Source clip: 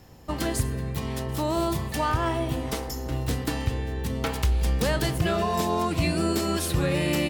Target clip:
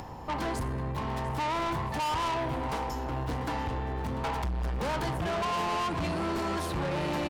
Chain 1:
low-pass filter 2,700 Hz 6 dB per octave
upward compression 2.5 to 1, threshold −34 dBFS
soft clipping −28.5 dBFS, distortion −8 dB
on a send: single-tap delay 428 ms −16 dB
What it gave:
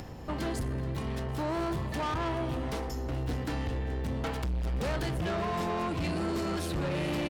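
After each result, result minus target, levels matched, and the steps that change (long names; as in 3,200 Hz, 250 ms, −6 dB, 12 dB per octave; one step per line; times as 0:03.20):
echo 266 ms early; 1,000 Hz band −4.5 dB
change: single-tap delay 694 ms −16 dB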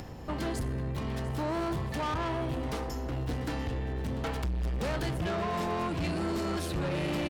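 1,000 Hz band −4.5 dB
add after low-pass filter: parametric band 930 Hz +13.5 dB 0.68 octaves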